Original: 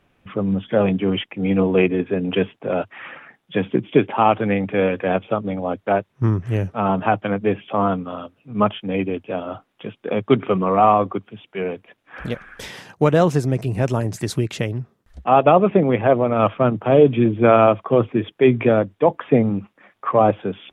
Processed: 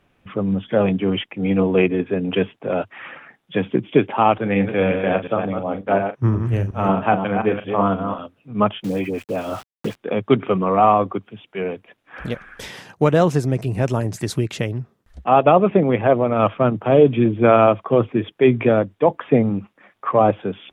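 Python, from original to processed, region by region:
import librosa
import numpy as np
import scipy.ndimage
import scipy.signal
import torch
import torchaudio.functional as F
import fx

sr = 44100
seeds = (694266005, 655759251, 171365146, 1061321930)

y = fx.chain(x, sr, fx.reverse_delay(ms=179, wet_db=-5.5),
    fx.doubler(ms=41.0, db=-11.5),
    fx.band_widen(depth_pct=40), at=(4.38, 8.19))
y = fx.chain(y, sr, fx.dispersion(late='highs', ms=81.0, hz=1200.0),
    fx.sample_gate(floor_db=-39.5),
    fx.band_squash(depth_pct=100), at=(8.84, 9.96))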